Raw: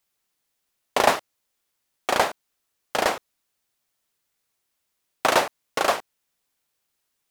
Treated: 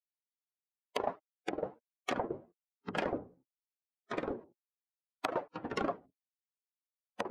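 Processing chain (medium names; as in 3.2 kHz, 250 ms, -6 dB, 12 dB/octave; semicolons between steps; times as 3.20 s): expander on every frequency bin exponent 2; 2.19–2.98 s: low-pass 1.7 kHz 12 dB/octave; low-pass that closes with the level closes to 830 Hz, closed at -25 dBFS; compression 4:1, threshold -31 dBFS, peak gain reduction 12.5 dB; ever faster or slower copies 197 ms, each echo -5 st, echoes 3; trim -1 dB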